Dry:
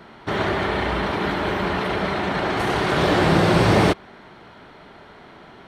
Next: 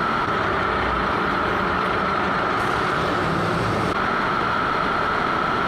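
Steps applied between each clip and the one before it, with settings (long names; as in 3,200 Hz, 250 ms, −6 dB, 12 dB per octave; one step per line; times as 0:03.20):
parametric band 1,300 Hz +12.5 dB 0.38 octaves
envelope flattener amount 100%
level −8.5 dB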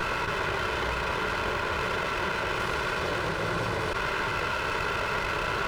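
lower of the sound and its delayed copy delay 2 ms
level −5.5 dB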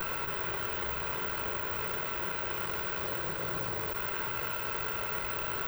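bad sample-rate conversion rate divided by 2×, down filtered, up zero stuff
level −8.5 dB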